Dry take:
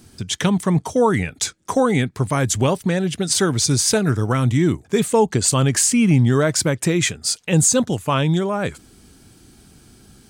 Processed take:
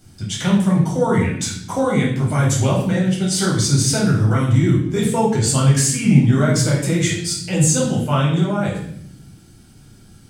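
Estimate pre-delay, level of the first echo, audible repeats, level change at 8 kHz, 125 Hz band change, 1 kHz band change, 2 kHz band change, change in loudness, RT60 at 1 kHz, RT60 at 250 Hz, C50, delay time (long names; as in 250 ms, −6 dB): 7 ms, no echo audible, no echo audible, −1.5 dB, +4.0 dB, −1.0 dB, −0.5 dB, +1.0 dB, 0.60 s, 1.2 s, 4.0 dB, no echo audible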